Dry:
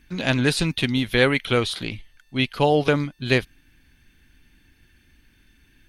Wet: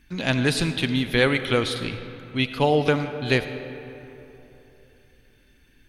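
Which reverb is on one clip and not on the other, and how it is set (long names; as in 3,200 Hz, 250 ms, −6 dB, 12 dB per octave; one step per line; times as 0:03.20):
comb and all-pass reverb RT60 3.3 s, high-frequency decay 0.5×, pre-delay 25 ms, DRR 9.5 dB
level −1.5 dB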